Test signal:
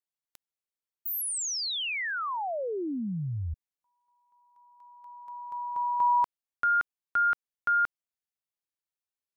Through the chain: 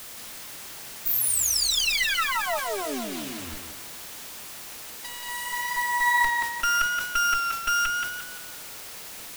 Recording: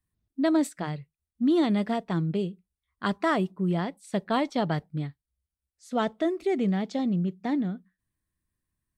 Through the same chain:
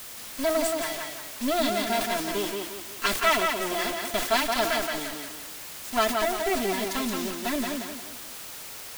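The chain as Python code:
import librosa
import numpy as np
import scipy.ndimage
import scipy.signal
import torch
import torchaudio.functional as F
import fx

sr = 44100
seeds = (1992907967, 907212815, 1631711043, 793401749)

p1 = fx.lower_of_two(x, sr, delay_ms=4.5)
p2 = fx.peak_eq(p1, sr, hz=87.0, db=-2.5, octaves=2.7)
p3 = p2 + 0.83 * np.pad(p2, (int(3.0 * sr / 1000.0), 0))[:len(p2)]
p4 = fx.rider(p3, sr, range_db=4, speed_s=0.5)
p5 = p3 + (p4 * 10.0 ** (1.0 / 20.0))
p6 = fx.quant_dither(p5, sr, seeds[0], bits=6, dither='none')
p7 = fx.tilt_shelf(p6, sr, db=-6.5, hz=1100.0)
p8 = fx.dmg_noise_colour(p7, sr, seeds[1], colour='white', level_db=-36.0)
p9 = p8 + fx.echo_tape(p8, sr, ms=175, feedback_pct=43, wet_db=-3.0, lp_hz=5600.0, drive_db=7.0, wow_cents=31, dry=0)
p10 = fx.sustainer(p9, sr, db_per_s=74.0)
y = p10 * 10.0 ** (-5.0 / 20.0)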